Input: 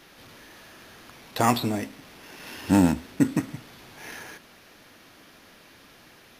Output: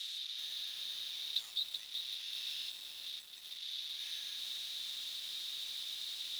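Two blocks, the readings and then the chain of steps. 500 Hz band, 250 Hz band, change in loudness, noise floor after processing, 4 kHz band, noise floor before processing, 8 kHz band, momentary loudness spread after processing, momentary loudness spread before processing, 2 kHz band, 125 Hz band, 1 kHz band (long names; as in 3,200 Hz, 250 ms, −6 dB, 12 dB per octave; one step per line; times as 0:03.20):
below −35 dB, below −40 dB, −14.5 dB, −50 dBFS, +5.5 dB, −53 dBFS, −8.5 dB, 6 LU, 22 LU, −14.5 dB, below −40 dB, below −30 dB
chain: converter with a step at zero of −28 dBFS
downward compressor 10 to 1, threshold −24 dBFS, peak gain reduction 11 dB
resonant band-pass 3,700 Hz, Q 11
first difference
feedback echo at a low word length 381 ms, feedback 55%, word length 10 bits, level −5 dB
level +9.5 dB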